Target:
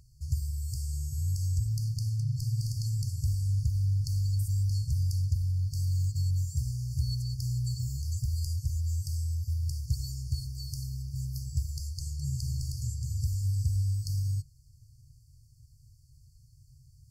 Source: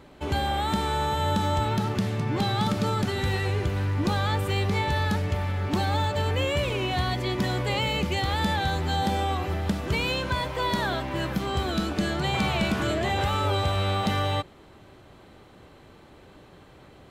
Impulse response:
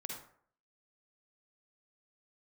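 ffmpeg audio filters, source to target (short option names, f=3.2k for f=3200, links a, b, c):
-af "afftfilt=real='re*(1-between(b*sr/4096,140,4400))':imag='im*(1-between(b*sr/4096,140,4400))':win_size=4096:overlap=0.75"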